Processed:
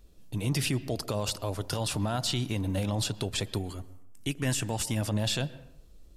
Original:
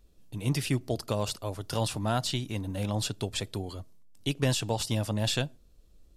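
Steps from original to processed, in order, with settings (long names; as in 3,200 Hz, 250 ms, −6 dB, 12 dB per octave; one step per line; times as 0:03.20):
0:03.58–0:05.02: octave-band graphic EQ 125/500/1,000/2,000/4,000/8,000 Hz −4/−7/−4/+4/−10/+3 dB
brickwall limiter −24 dBFS, peak gain reduction 9.5 dB
convolution reverb RT60 0.80 s, pre-delay 112 ms, DRR 17.5 dB
level +4.5 dB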